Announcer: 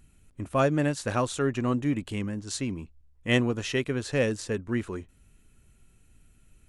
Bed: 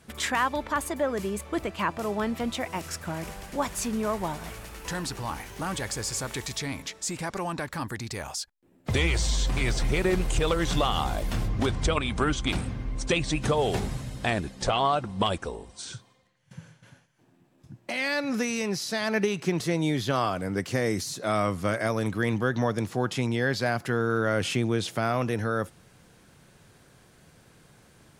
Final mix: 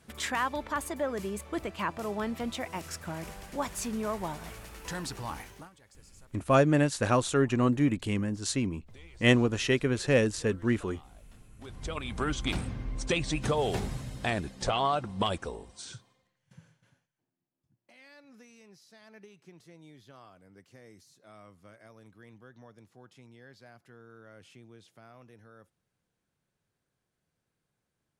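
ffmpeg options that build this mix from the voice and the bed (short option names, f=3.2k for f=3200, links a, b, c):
-filter_complex "[0:a]adelay=5950,volume=1.5dB[a];[1:a]volume=20dB,afade=t=out:st=5.41:d=0.29:silence=0.0668344,afade=t=in:st=11.58:d=0.87:silence=0.0595662,afade=t=out:st=15.57:d=1.76:silence=0.0668344[b];[a][b]amix=inputs=2:normalize=0"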